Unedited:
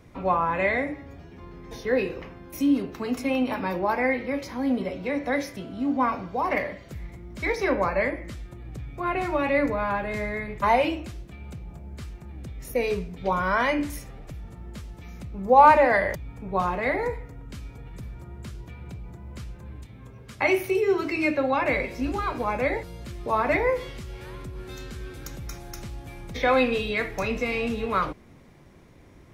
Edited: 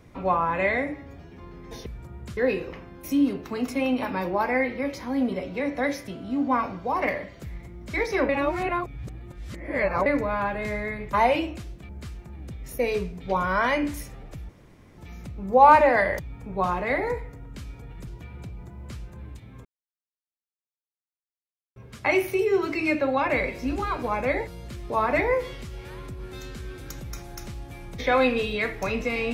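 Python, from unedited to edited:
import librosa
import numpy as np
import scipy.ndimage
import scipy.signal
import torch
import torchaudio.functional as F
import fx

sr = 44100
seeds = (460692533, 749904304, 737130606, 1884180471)

y = fx.edit(x, sr, fx.reverse_span(start_s=7.78, length_s=1.77),
    fx.cut(start_s=11.38, length_s=0.47),
    fx.room_tone_fill(start_s=14.45, length_s=0.49),
    fx.move(start_s=18.03, length_s=0.51, to_s=1.86),
    fx.insert_silence(at_s=20.12, length_s=2.11), tone=tone)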